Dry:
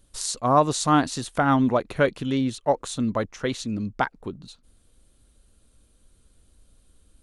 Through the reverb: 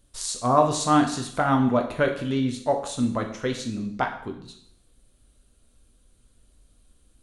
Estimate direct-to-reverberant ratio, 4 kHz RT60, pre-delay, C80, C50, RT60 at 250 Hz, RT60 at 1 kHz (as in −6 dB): 3.0 dB, 0.65 s, 5 ms, 12.0 dB, 9.0 dB, 0.60 s, 0.65 s